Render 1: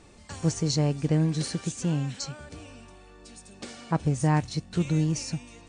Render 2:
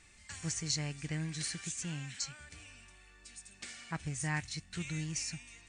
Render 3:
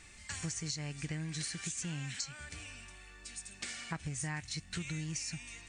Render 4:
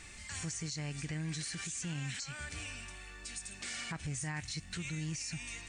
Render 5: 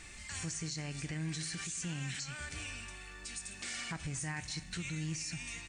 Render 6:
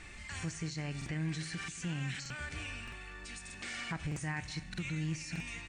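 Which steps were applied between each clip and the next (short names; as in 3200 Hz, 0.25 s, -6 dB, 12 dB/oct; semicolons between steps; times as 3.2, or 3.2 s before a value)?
graphic EQ 125/250/500/1000/2000/8000 Hz -4/-7/-11/-5/+10/+7 dB; gain -7.5 dB
compressor 10:1, threshold -41 dBFS, peak gain reduction 12 dB; gain +5.5 dB
limiter -35.5 dBFS, peak gain reduction 11 dB; gain +4.5 dB
echo 0.232 s -18 dB; reverb, pre-delay 3 ms, DRR 12.5 dB
tone controls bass 0 dB, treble -10 dB; crackling interface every 0.62 s, samples 2048, repeat, from 0.97; gain +2.5 dB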